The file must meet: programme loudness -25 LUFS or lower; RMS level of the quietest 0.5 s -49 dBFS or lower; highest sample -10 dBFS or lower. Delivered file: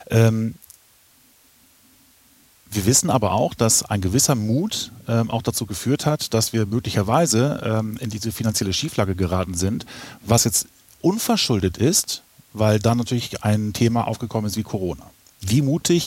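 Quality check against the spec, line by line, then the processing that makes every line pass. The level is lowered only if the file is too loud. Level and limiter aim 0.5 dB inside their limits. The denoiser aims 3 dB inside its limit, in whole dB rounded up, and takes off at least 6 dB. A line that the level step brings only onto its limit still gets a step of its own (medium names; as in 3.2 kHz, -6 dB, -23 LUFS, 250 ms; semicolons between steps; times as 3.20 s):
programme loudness -21.0 LUFS: fail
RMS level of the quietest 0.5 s -55 dBFS: pass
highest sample -1.5 dBFS: fail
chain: trim -4.5 dB; peak limiter -10.5 dBFS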